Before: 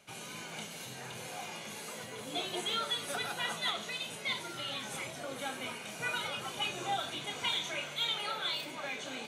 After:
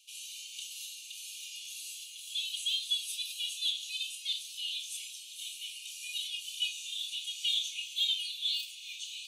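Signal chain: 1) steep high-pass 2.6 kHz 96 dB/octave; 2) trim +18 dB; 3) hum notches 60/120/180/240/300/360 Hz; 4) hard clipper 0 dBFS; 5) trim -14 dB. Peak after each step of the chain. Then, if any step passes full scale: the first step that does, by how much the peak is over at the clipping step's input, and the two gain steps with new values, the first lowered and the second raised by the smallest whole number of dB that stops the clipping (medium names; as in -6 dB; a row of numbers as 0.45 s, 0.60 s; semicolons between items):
-22.5 dBFS, -4.5 dBFS, -4.5 dBFS, -4.5 dBFS, -18.5 dBFS; nothing clips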